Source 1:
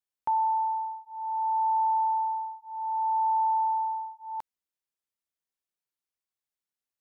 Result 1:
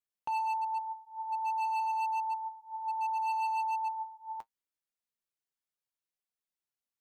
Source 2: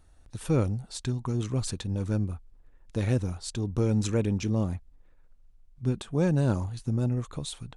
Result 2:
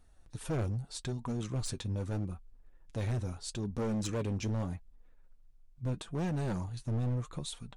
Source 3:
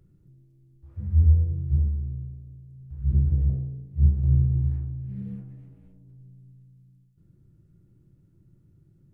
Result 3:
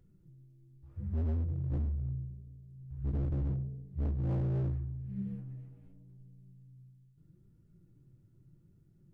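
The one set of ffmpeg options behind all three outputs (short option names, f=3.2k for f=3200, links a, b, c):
-af "flanger=delay=4:depth=4.9:regen=47:speed=0.79:shape=triangular,volume=29.5dB,asoftclip=hard,volume=-29.5dB"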